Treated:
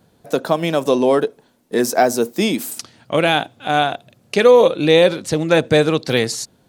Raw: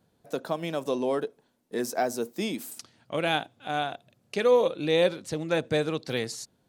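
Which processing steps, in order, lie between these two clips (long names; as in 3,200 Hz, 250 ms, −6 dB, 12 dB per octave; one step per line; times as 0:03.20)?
boost into a limiter +13.5 dB
level −1 dB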